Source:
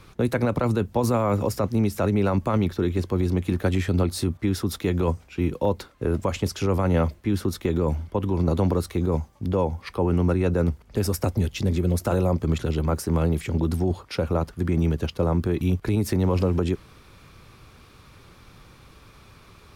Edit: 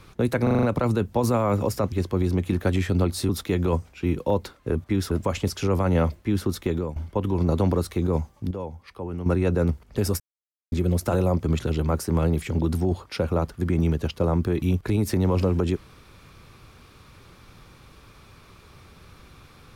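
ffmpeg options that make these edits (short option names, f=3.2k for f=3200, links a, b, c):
-filter_complex "[0:a]asplit=15[a][b][c][d][e][f][g][h][i][j][k][l][m][n][o];[a]atrim=end=0.472[p];[b]atrim=start=0.428:end=0.472[q];[c]atrim=start=0.428:end=0.472[r];[d]atrim=start=0.428:end=0.472[s];[e]atrim=start=0.428:end=0.472[t];[f]atrim=start=0.428:end=1.722[u];[g]atrim=start=2.908:end=4.282[v];[h]atrim=start=4.638:end=6.102[w];[i]atrim=start=4.278:end=4.642[x];[j]atrim=start=6.098:end=7.95,asetpts=PTS-STARTPTS,afade=t=out:st=1.462:d=0.39:c=qsin:silence=0.141254[y];[k]atrim=start=7.95:end=9.502,asetpts=PTS-STARTPTS,afade=t=in:d=0.004:c=hsin:silence=0.141254[z];[l]atrim=start=9.498:end=10.252,asetpts=PTS-STARTPTS,volume=-10dB[aa];[m]atrim=start=10.248:end=11.19,asetpts=PTS-STARTPTS,afade=t=out:st=0.938:d=0.004:c=hsin[ab];[n]atrim=start=11.19:end=11.71,asetpts=PTS-STARTPTS,volume=0[ac];[o]atrim=start=11.71,asetpts=PTS-STARTPTS,afade=t=in:d=0.004:c=hsin[ad];[p][q]acrossfade=d=0.004:c1=hsin:c2=hsin[ae];[ae][r]acrossfade=d=0.004:c1=hsin:c2=hsin[af];[af][s]acrossfade=d=0.004:c1=hsin:c2=hsin[ag];[ag][t]acrossfade=d=0.004:c1=hsin:c2=hsin[ah];[ah][u]acrossfade=d=0.004:c1=hsin:c2=hsin[ai];[ai][v]acrossfade=d=0.004:c1=hsin:c2=hsin[aj];[aj][w]acrossfade=d=0.004:c1=hsin:c2=hsin[ak];[ak][x]acrossfade=d=0.004:c1=hsin:c2=hsin[al];[y][z]concat=n=2:v=0:a=1[am];[al][am]acrossfade=d=0.004:c1=hsin:c2=hsin[an];[an][aa]acrossfade=d=0.004:c1=hsin:c2=hsin[ao];[ab][ac][ad]concat=n=3:v=0:a=1[ap];[ao][ap]acrossfade=d=0.004:c1=hsin:c2=hsin"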